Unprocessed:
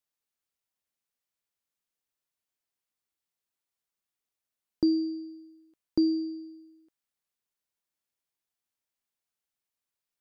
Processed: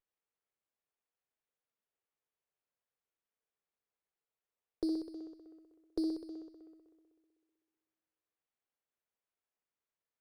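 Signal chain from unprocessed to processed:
low shelf with overshoot 300 Hz −12.5 dB, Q 3
bucket-brigade delay 63 ms, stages 1,024, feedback 80%, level −7 dB
windowed peak hold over 9 samples
level −7 dB

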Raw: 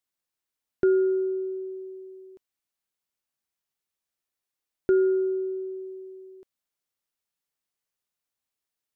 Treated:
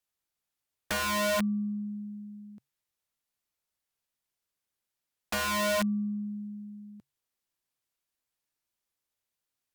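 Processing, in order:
wrong playback speed 48 kHz file played as 44.1 kHz
frequency shifter −140 Hz
wrap-around overflow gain 24 dB

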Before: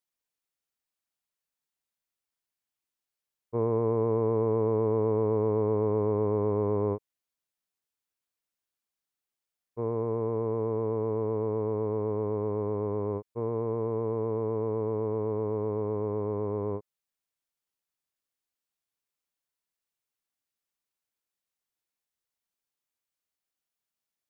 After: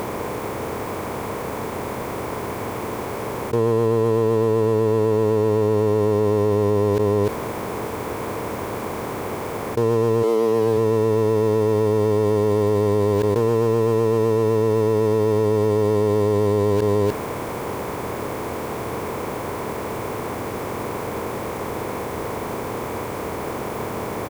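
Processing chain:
compressor on every frequency bin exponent 0.6
0:10.22–0:10.76: high-pass filter 290 Hz → 87 Hz 24 dB per octave
in parallel at −11.5 dB: log-companded quantiser 2 bits
on the sum: single-tap delay 298 ms −22.5 dB
envelope flattener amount 100%
level +4 dB

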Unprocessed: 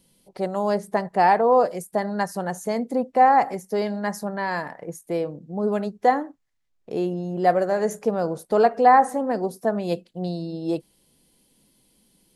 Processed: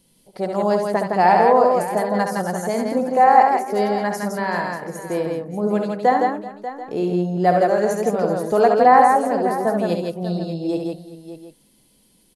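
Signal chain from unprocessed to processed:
0:03.05–0:03.72: Butterworth high-pass 270 Hz
multi-tap delay 68/163/384/590/736 ms −6/−3.5/−18.5/−13/−18 dB
level +1.5 dB

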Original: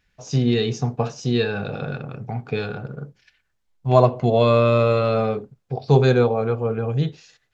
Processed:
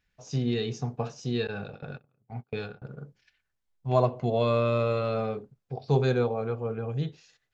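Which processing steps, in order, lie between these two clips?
0:01.47–0:02.82: noise gate −27 dBFS, range −30 dB
level −8.5 dB

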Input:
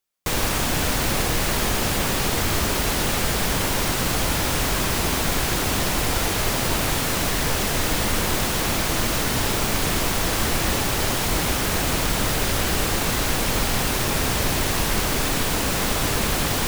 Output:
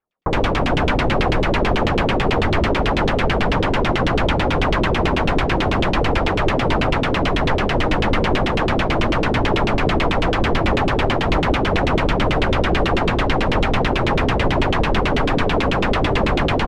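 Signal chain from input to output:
multiband delay without the direct sound lows, highs 70 ms, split 1,700 Hz
auto-filter low-pass saw down 9.1 Hz 300–3,300 Hz
level +5 dB

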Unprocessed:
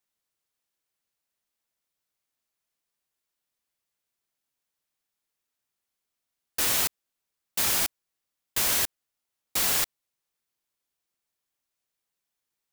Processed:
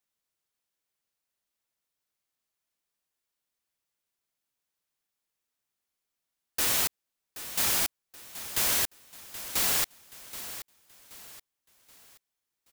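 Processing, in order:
repeating echo 777 ms, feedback 38%, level −13.5 dB
level −1.5 dB

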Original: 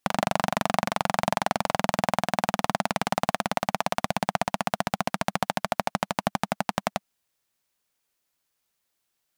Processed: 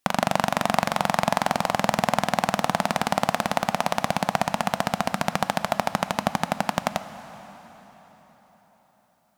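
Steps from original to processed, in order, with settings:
dense smooth reverb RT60 4.7 s, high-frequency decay 0.8×, DRR 11.5 dB
level +2.5 dB

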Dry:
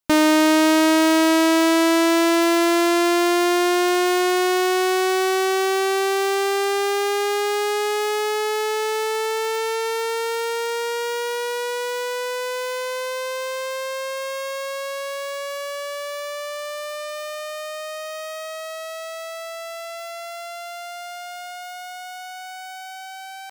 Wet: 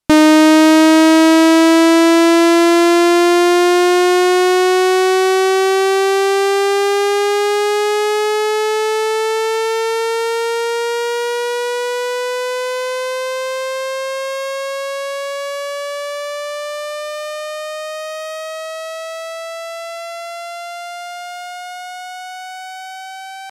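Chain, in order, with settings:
Bessel low-pass filter 11,000 Hz, order 8
low-shelf EQ 310 Hz +6.5 dB
level +5 dB

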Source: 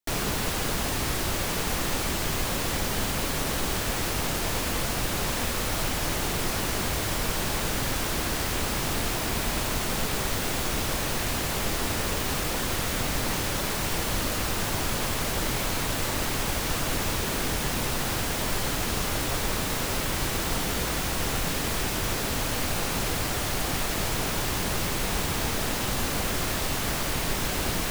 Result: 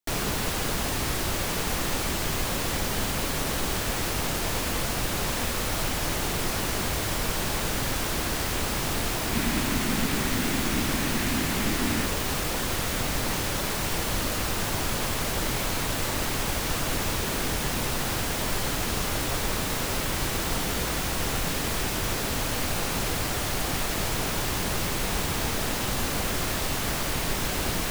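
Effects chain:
0:09.33–0:12.06: octave-band graphic EQ 250/500/2,000 Hz +10/−4/+3 dB

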